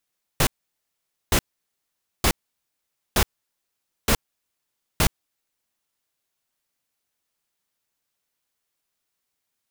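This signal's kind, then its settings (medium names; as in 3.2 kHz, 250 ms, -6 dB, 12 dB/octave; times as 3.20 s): noise bursts pink, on 0.07 s, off 0.85 s, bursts 6, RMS -18 dBFS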